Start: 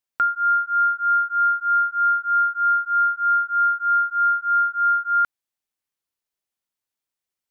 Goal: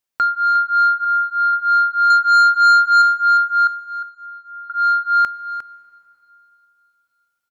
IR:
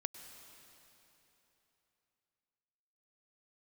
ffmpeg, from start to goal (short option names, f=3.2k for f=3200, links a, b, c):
-filter_complex "[0:a]asettb=1/sr,asplit=3[a][b][c];[a]atrim=end=1.044[d];[b]atrim=start=1.04:end=1.53,asetpts=PTS-STARTPTS,afade=t=in:d=0.004:c=qsin,afade=t=out:st=0.486:d=0.004:c=qsin,aecho=1:1:2.6:0.71,atrim=end_sample=21609[e];[c]atrim=start=1.526[f];[d][e]acrossfade=d=0.004:c1=hsin:c2=qsin[g];[g][f]acrossfade=d=0.004:c1=qsin:c2=hsin,asettb=1/sr,asplit=3[h][i][j];[h]atrim=end=2.104[k];[i]atrim=start=2.1:end=3.02,asetpts=PTS-STARTPTS,afade=t=in:d=0.004:c=qsin,afade=t=out:st=0.916:d=0.004:c=qsin,acontrast=64[l];[j]atrim=start=3.016[m];[k][l]acrossfade=d=0.004:c1=hsin:c2=qsin[n];[n][m]acrossfade=d=0.004:c1=qsin:c2=hsin,asettb=1/sr,asplit=3[o][p][q];[o]atrim=end=3.674[r];[p]atrim=start=3.67:end=4.7,asetpts=PTS-STARTPTS,afade=t=in:d=0.004:c=qsin,afade=t=out:st=1.026:d=0.004:c=qsin,asplit=3[s][t][u];[s]bandpass=f=530:t=q:w=8,volume=0dB[v];[t]bandpass=f=1.84k:t=q:w=8,volume=-6dB[w];[u]bandpass=f=2.48k:t=q:w=8,volume=-9dB[x];[v][w][x]amix=inputs=3:normalize=0[y];[q]atrim=start=4.696[z];[r][y]acrossfade=d=0.004:c1=hsin:c2=qsin[aa];[aa][z]acrossfade=d=0.004:c1=qsin:c2=hsin,asoftclip=type=tanh:threshold=-14dB,aecho=1:1:355:0.251,asplit=2[ab][ac];[1:a]atrim=start_sample=2205[ad];[ac][ad]afir=irnorm=-1:irlink=0,volume=-8dB[ae];[ab][ae]amix=inputs=2:normalize=0,volume=2dB"